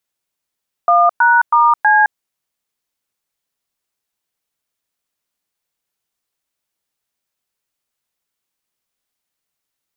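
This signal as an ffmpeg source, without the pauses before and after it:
ffmpeg -f lavfi -i "aevalsrc='0.299*clip(min(mod(t,0.322),0.214-mod(t,0.322))/0.002,0,1)*(eq(floor(t/0.322),0)*(sin(2*PI*697*mod(t,0.322))+sin(2*PI*1209*mod(t,0.322)))+eq(floor(t/0.322),1)*(sin(2*PI*941*mod(t,0.322))+sin(2*PI*1477*mod(t,0.322)))+eq(floor(t/0.322),2)*(sin(2*PI*941*mod(t,0.322))+sin(2*PI*1209*mod(t,0.322)))+eq(floor(t/0.322),3)*(sin(2*PI*852*mod(t,0.322))+sin(2*PI*1633*mod(t,0.322))))':duration=1.288:sample_rate=44100" out.wav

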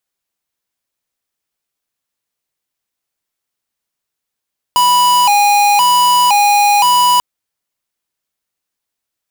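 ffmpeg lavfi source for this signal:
ffmpeg -f lavfi -i "aevalsrc='0.316*(2*lt(mod((902*t+82/0.97*(0.5-abs(mod(0.97*t,1)-0.5))),1),0.5)-1)':duration=2.44:sample_rate=44100" out.wav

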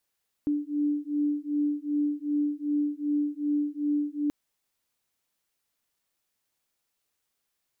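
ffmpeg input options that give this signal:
ffmpeg -f lavfi -i "aevalsrc='0.0398*(sin(2*PI*292*t)+sin(2*PI*294.6*t))':duration=3.83:sample_rate=44100" out.wav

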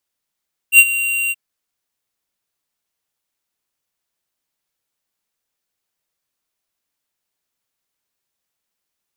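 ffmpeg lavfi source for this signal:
ffmpeg -f lavfi -i "aevalsrc='0.596*(2*lt(mod(2760*t,1),0.5)-1)':duration=0.626:sample_rate=44100,afade=type=in:duration=0.068,afade=type=out:start_time=0.068:duration=0.052:silence=0.178,afade=type=out:start_time=0.59:duration=0.036" out.wav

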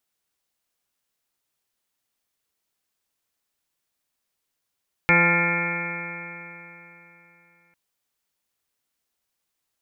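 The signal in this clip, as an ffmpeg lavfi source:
ffmpeg -f lavfi -i "aevalsrc='0.0794*pow(10,-3*t/3.33)*sin(2*PI*170.07*t)+0.0422*pow(10,-3*t/3.33)*sin(2*PI*340.57*t)+0.0531*pow(10,-3*t/3.33)*sin(2*PI*511.92*t)+0.0158*pow(10,-3*t/3.33)*sin(2*PI*684.55*t)+0.0531*pow(10,-3*t/3.33)*sin(2*PI*858.88*t)+0.0282*pow(10,-3*t/3.33)*sin(2*PI*1035.31*t)+0.0112*pow(10,-3*t/3.33)*sin(2*PI*1214.24*t)+0.0841*pow(10,-3*t/3.33)*sin(2*PI*1396.08*t)+0.00891*pow(10,-3*t/3.33)*sin(2*PI*1581.19*t)+0.0794*pow(10,-3*t/3.33)*sin(2*PI*1769.96*t)+0.0126*pow(10,-3*t/3.33)*sin(2*PI*1962.73*t)+0.126*pow(10,-3*t/3.33)*sin(2*PI*2159.86*t)+0.1*pow(10,-3*t/3.33)*sin(2*PI*2361.66*t)+0.0158*pow(10,-3*t/3.33)*sin(2*PI*2568.46*t)':duration=2.65:sample_rate=44100" out.wav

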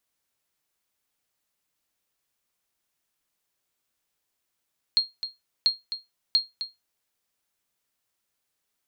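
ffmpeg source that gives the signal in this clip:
ffmpeg -f lavfi -i "aevalsrc='0.237*(sin(2*PI*4240*mod(t,0.69))*exp(-6.91*mod(t,0.69)/0.19)+0.282*sin(2*PI*4240*max(mod(t,0.69)-0.26,0))*exp(-6.91*max(mod(t,0.69)-0.26,0)/0.19))':duration=2.07:sample_rate=44100" out.wav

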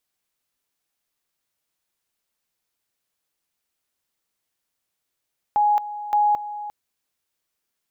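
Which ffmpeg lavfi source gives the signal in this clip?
ffmpeg -f lavfi -i "aevalsrc='pow(10,(-15-14*gte(mod(t,0.57),0.22))/20)*sin(2*PI*833*t)':duration=1.14:sample_rate=44100" out.wav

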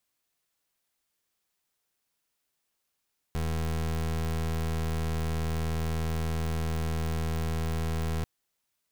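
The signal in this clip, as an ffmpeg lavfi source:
ffmpeg -f lavfi -i "aevalsrc='0.0335*(2*lt(mod(80.3*t,1),0.27)-1)':duration=4.89:sample_rate=44100" out.wav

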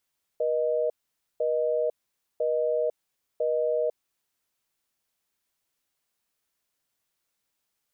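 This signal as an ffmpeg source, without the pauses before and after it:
ffmpeg -f lavfi -i "aevalsrc='0.0531*(sin(2*PI*480*t)+sin(2*PI*620*t))*clip(min(mod(t,1),0.5-mod(t,1))/0.005,0,1)':duration=3.6:sample_rate=44100" out.wav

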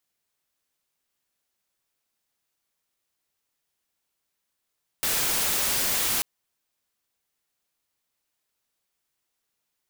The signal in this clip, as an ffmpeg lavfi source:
ffmpeg -f lavfi -i "anoisesrc=color=white:amplitude=0.0974:duration=1.19:sample_rate=44100:seed=1" out.wav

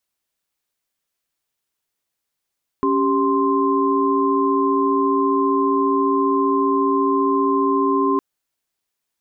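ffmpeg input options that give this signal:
ffmpeg -f lavfi -i "aevalsrc='0.106*(sin(2*PI*277.18*t)+sin(2*PI*392*t)+sin(2*PI*1046.5*t))':duration=5.36:sample_rate=44100" out.wav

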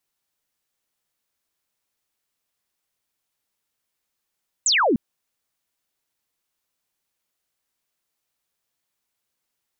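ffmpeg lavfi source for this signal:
ffmpeg -f lavfi -i "aevalsrc='0.168*clip(t/0.002,0,1)*clip((0.3-t)/0.002,0,1)*sin(2*PI*8200*0.3/log(200/8200)*(exp(log(200/8200)*t/0.3)-1))':duration=0.3:sample_rate=44100" out.wav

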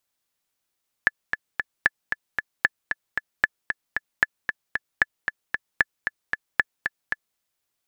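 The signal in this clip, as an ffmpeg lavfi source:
ffmpeg -f lavfi -i "aevalsrc='pow(10,(-3.5-7*gte(mod(t,3*60/228),60/228))/20)*sin(2*PI*1730*mod(t,60/228))*exp(-6.91*mod(t,60/228)/0.03)':duration=6.31:sample_rate=44100" out.wav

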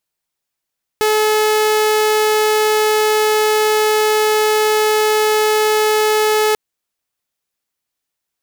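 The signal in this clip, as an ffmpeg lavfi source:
ffmpeg -f lavfi -i "aevalsrc='0.335*(2*mod(429*t,1)-1)':duration=5.54:sample_rate=44100" out.wav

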